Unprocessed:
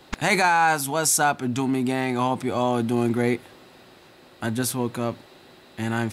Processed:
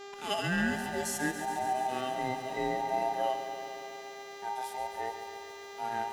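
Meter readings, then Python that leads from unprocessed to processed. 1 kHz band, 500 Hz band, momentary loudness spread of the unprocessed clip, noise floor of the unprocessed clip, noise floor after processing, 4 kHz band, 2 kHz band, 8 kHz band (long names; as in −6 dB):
−7.5 dB, −8.5 dB, 11 LU, −51 dBFS, −46 dBFS, −7.5 dB, −10.0 dB, −15.0 dB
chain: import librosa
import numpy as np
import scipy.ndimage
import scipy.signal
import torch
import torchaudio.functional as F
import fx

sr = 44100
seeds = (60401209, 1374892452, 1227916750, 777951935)

y = fx.band_invert(x, sr, width_hz=1000)
y = fx.dmg_buzz(y, sr, base_hz=400.0, harmonics=19, level_db=-37.0, tilt_db=-6, odd_only=False)
y = fx.low_shelf(y, sr, hz=130.0, db=-10.0)
y = fx.hpss(y, sr, part='percussive', gain_db=-17)
y = fx.echo_crushed(y, sr, ms=139, feedback_pct=80, bits=8, wet_db=-10)
y = F.gain(torch.from_numpy(y), -8.0).numpy()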